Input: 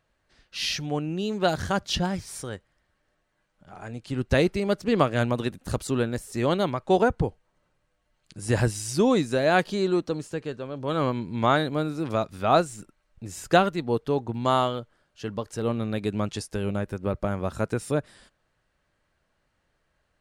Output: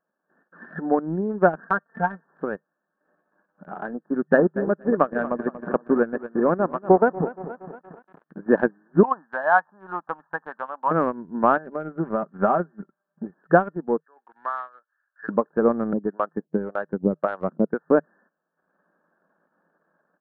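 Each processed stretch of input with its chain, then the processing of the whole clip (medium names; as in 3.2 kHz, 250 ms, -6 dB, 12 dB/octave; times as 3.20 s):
1.60–2.26 s: high-pass 880 Hz 6 dB/octave + comb 4.4 ms, depth 84%
4.10–8.52 s: partial rectifier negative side -3 dB + bit-crushed delay 234 ms, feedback 55%, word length 7-bit, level -10 dB
9.03–10.91 s: high-pass 180 Hz + resonant low shelf 600 Hz -13 dB, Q 3
11.57–13.34 s: comb 5.1 ms, depth 46% + compression, threshold -23 dBFS
14.00–15.29 s: resonant high-pass 2.4 kHz, resonance Q 3.8 + three bands compressed up and down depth 40%
15.93–17.88 s: bass shelf 90 Hz +7 dB + harmonic tremolo 1.8 Hz, depth 100%, crossover 500 Hz
whole clip: FFT band-pass 160–1800 Hz; level rider gain up to 13 dB; transient shaper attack +6 dB, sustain -11 dB; trim -6.5 dB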